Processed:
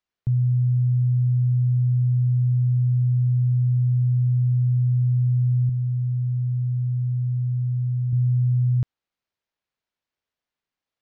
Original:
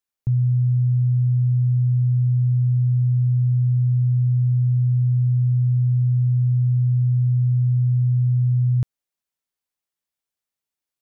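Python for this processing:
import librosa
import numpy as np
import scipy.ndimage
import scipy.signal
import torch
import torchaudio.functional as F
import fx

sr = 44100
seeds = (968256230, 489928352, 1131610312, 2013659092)

y = fx.low_shelf(x, sr, hz=99.0, db=-10.0, at=(5.69, 8.13))
y = np.interp(np.arange(len(y)), np.arange(len(y))[::4], y[::4])
y = y * 10.0 ** (-1.5 / 20.0)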